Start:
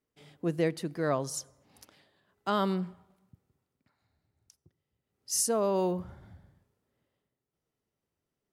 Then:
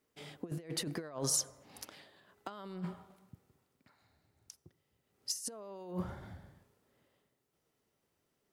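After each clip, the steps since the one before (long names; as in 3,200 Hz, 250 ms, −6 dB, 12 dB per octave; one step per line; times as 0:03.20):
compressor whose output falls as the input rises −36 dBFS, ratio −0.5
low-shelf EQ 190 Hz −7 dB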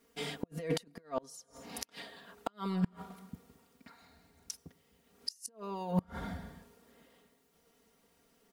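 comb filter 4.3 ms, depth 89%
gate with flip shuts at −28 dBFS, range −31 dB
level +8.5 dB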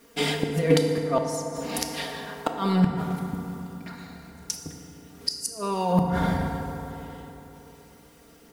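in parallel at −2 dB: brickwall limiter −28.5 dBFS, peak gain reduction 10.5 dB
on the sum: feedback delay network reverb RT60 3.4 s, high-frequency decay 0.4×, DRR 2.5 dB
level +8 dB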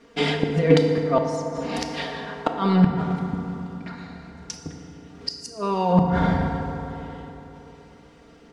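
high-frequency loss of the air 130 metres
level +4 dB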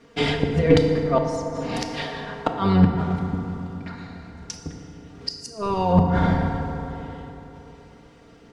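sub-octave generator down 1 octave, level −5 dB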